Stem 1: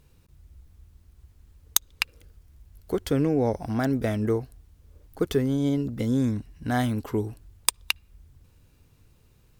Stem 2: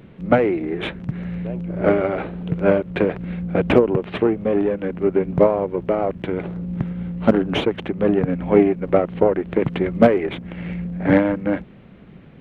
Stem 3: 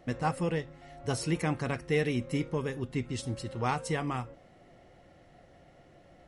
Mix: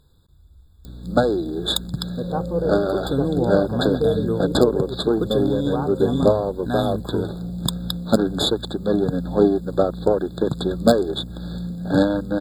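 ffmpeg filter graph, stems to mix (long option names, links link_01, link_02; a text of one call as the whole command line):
ffmpeg -i stem1.wav -i stem2.wav -i stem3.wav -filter_complex "[0:a]equalizer=frequency=3500:width_type=o:width=0.28:gain=11.5,asoftclip=type=tanh:threshold=-6.5dB,volume=0.5dB[link_01];[1:a]aeval=exprs='val(0)+0.02*(sin(2*PI*60*n/s)+sin(2*PI*2*60*n/s)/2+sin(2*PI*3*60*n/s)/3+sin(2*PI*4*60*n/s)/4+sin(2*PI*5*60*n/s)/5)':channel_layout=same,bandreject=frequency=980:width=12,aexciter=amount=14.2:drive=6.7:freq=3600,adelay=850,volume=-2dB[link_02];[2:a]lowpass=frequency=1300:poles=1,equalizer=frequency=490:width_type=o:width=1.2:gain=12.5,adelay=2100,volume=-1.5dB[link_03];[link_01][link_02][link_03]amix=inputs=3:normalize=0,afftfilt=real='re*eq(mod(floor(b*sr/1024/1700),2),0)':imag='im*eq(mod(floor(b*sr/1024/1700),2),0)':win_size=1024:overlap=0.75" out.wav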